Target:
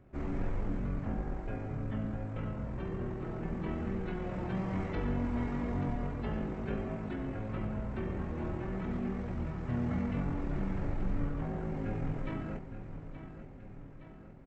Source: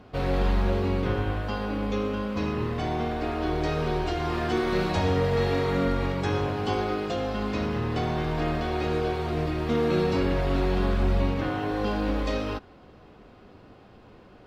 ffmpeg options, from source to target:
ffmpeg -i in.wav -af "aecho=1:1:871|1742|2613|3484|4355|5226:0.282|0.158|0.0884|0.0495|0.0277|0.0155,asetrate=22696,aresample=44100,atempo=1.94306,volume=-8.5dB" out.wav

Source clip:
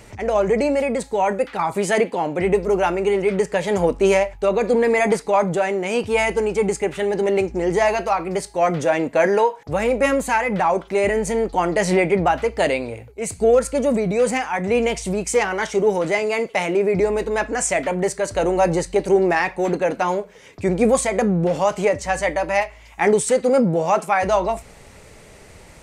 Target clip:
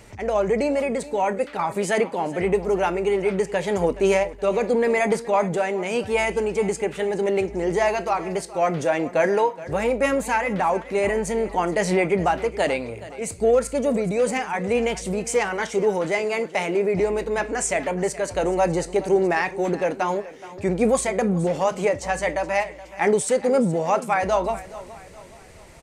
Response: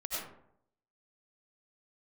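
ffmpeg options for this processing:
-af "aecho=1:1:422|844|1266|1688:0.141|0.0593|0.0249|0.0105,volume=-3dB"

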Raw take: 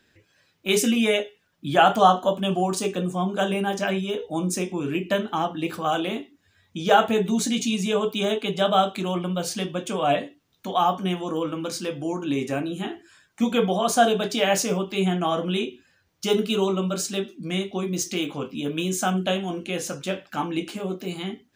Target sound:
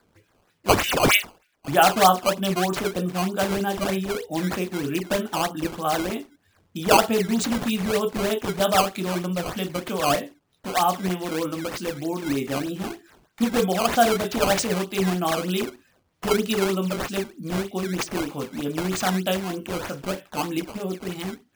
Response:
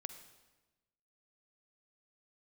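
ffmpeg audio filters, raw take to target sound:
-filter_complex "[0:a]asettb=1/sr,asplit=3[link_01][link_02][link_03];[link_01]atrim=end=0.694[link_04];[link_02]atrim=start=0.69:end=1.68,asetpts=PTS-STARTPTS,afade=type=in:duration=0.004:curve=qsin,afade=type=out:start_time=0.986:duration=0.004:curve=qsin,highpass=frequency=2300:width_type=q:width=4.1[link_05];[link_03]atrim=start=1.676[link_06];[link_04][link_05]acrossfade=duration=0.004:curve1=hsin:curve2=qsin[link_07];[link_07][link_06]acrossfade=duration=0.004:curve1=qsin:curve2=hsin,acrusher=samples=14:mix=1:aa=0.000001:lfo=1:lforange=22.4:lforate=3.2"

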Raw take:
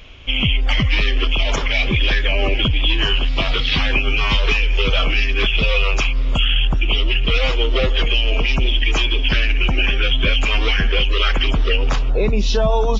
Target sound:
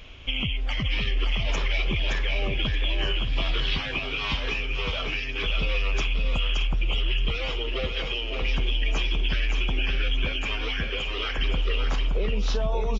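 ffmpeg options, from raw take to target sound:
ffmpeg -i in.wav -filter_complex "[0:a]asplit=2[link_01][link_02];[link_02]aecho=0:1:623:0.188[link_03];[link_01][link_03]amix=inputs=2:normalize=0,acompressor=threshold=-20dB:ratio=6,asplit=2[link_04][link_05];[link_05]aecho=0:1:570:0.562[link_06];[link_04][link_06]amix=inputs=2:normalize=0,volume=-4dB" out.wav

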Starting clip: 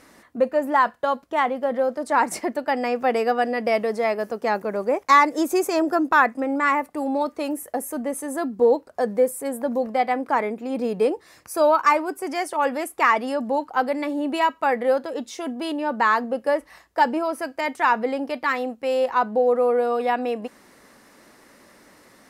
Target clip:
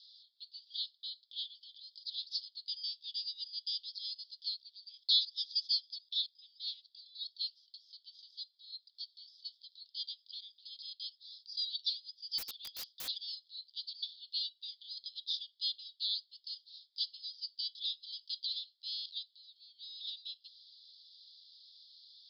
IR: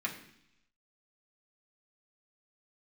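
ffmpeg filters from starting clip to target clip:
-filter_complex "[0:a]acontrast=39,asuperpass=centerf=4100:order=12:qfactor=2.4,asettb=1/sr,asplit=3[link_01][link_02][link_03];[link_01]atrim=end=12.384[link_04];[link_02]atrim=start=12.38:end=13.08,asetpts=PTS-STARTPTS,afade=type=in:duration=0.004:curve=qsin,afade=type=out:start_time=0.696:duration=0.004:curve=qsin,aeval=exprs='(mod(84.1*val(0)+1,2)-1)/84.1':channel_layout=same[link_05];[link_03]atrim=start=13.076[link_06];[link_04][link_05]acrossfade=duration=0.004:curve1=hsin:curve2=qsin[link_07];[link_07][link_06]acrossfade=duration=0.004:curve1=qsin:curve2=hsin,volume=2dB"

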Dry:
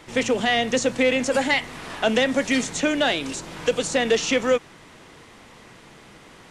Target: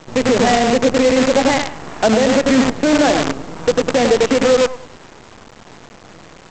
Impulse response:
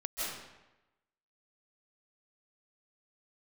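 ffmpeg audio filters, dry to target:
-af "acontrast=63,lowpass=1100,aecho=1:1:96|192|288|384:0.531|0.175|0.0578|0.0191,aresample=16000,acrusher=bits=4:dc=4:mix=0:aa=0.000001,aresample=44100,alimiter=level_in=7dB:limit=-1dB:release=50:level=0:latency=1,volume=-3.5dB"

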